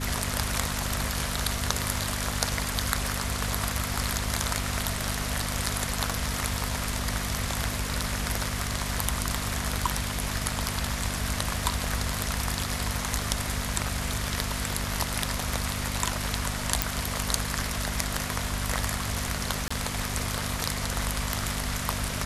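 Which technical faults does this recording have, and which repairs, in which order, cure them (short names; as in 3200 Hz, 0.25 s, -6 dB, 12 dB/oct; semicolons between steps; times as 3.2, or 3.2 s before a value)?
hum 50 Hz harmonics 5 -34 dBFS
16.82 pop
19.68–19.7 gap 25 ms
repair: de-click; de-hum 50 Hz, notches 5; interpolate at 19.68, 25 ms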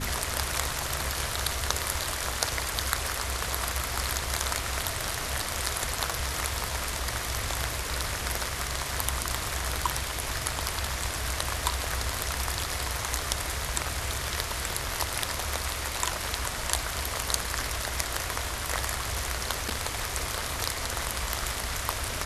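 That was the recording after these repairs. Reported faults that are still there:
none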